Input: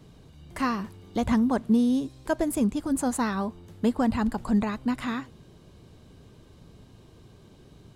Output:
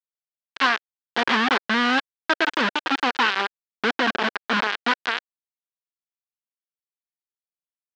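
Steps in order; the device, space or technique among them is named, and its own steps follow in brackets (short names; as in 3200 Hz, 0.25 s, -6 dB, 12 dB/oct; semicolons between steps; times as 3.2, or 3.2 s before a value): 4–4.57 elliptic low-pass 630 Hz; hand-held game console (bit-crush 4-bit; speaker cabinet 460–4400 Hz, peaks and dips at 600 Hz -8 dB, 1600 Hz +7 dB, 3100 Hz +3 dB); gain +6 dB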